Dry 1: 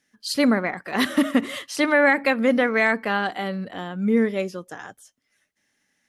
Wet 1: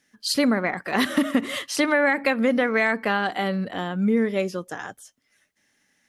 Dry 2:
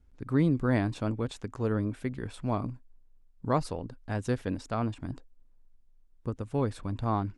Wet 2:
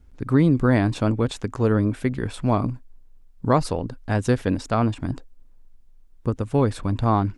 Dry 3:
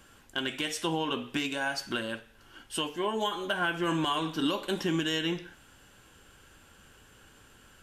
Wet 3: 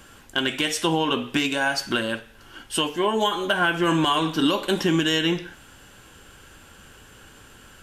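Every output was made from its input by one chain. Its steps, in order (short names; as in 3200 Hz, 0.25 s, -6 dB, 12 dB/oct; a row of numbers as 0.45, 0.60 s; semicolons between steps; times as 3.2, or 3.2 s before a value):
compressor 2.5:1, threshold -23 dBFS; match loudness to -23 LUFS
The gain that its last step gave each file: +3.5, +10.0, +8.5 dB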